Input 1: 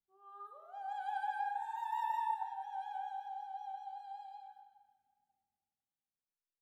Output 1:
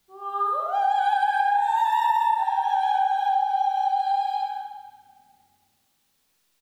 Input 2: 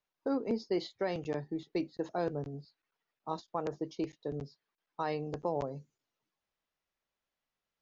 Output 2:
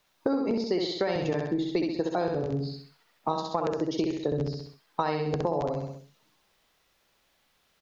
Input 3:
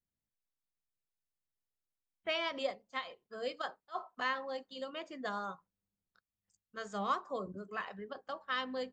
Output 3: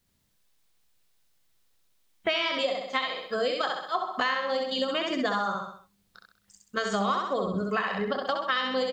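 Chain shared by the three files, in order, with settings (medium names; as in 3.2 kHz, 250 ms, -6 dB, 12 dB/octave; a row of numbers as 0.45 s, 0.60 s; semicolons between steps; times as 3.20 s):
peaking EQ 3.8 kHz +3.5 dB 0.82 oct; on a send: feedback delay 65 ms, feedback 41%, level -3.5 dB; on the sum: compression 6:1, threshold -43 dBFS; peak normalisation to -12 dBFS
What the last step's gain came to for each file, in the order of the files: +23.5 dB, +17.5 dB, +18.0 dB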